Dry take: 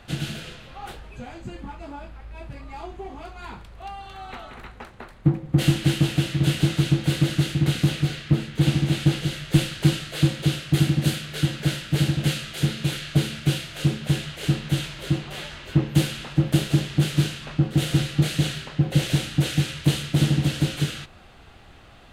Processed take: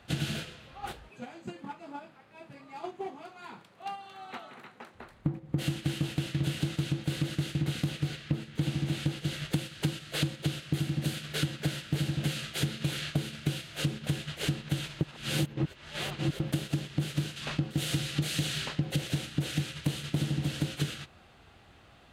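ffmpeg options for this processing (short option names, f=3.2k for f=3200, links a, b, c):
-filter_complex "[0:a]asettb=1/sr,asplit=3[a][b][c];[a]atrim=end=1.084[d];[b]atrim=start=1.08:end=4.95,asetpts=PTS-STARTPTS,afade=t=in:d=0.004:c=qsin,afade=t=out:st=3.866:d=0.004:c=qsin,highpass=f=150:w=0.5412,highpass=f=150:w=1.3066[e];[c]atrim=start=4.946[f];[d][e]acrossfade=d=0.004:c1=hsin:c2=qsin[g];[g][f]acrossfade=d=0.004:c1=qsin:c2=hsin,asettb=1/sr,asplit=3[h][i][j];[h]atrim=end=17.364[k];[i]atrim=start=17.36:end=18.96,asetpts=PTS-STARTPTS,afade=t=in:d=0.004:c=qsin,afade=t=out:st=1.596:d=0.004:c=qsin,highshelf=f=2.1k:g=6.5[l];[j]atrim=start=18.956[m];[k][l]acrossfade=d=0.004:c1=hsin:c2=qsin[n];[n][m]acrossfade=d=0.004:c1=qsin:c2=hsin,asplit=3[o][p][q];[o]atrim=end=15.012[r];[p]atrim=start=15.008:end=16.402,asetpts=PTS-STARTPTS,areverse[s];[q]atrim=start=16.398[t];[r][s]acrossfade=d=0.004:c1=hsin:c2=hsin[u];[u][t]acrossfade=d=0.004:c1=hsin:c2=hsin,highpass=58,acompressor=threshold=-26dB:ratio=12,agate=range=-7dB:threshold=-36dB:ratio=16:detection=peak"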